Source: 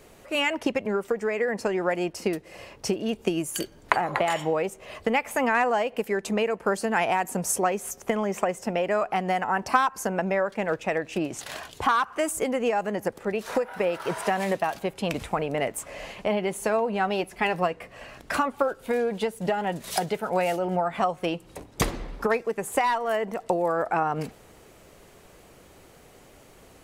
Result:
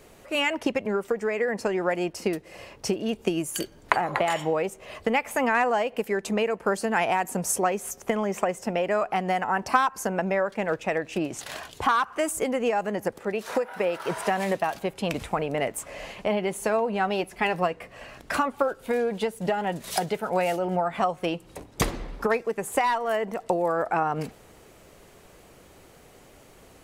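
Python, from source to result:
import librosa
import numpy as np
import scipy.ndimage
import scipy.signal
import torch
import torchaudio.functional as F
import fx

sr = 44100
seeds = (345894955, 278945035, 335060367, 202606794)

y = fx.low_shelf(x, sr, hz=90.0, db=-11.0, at=(13.2, 14.09))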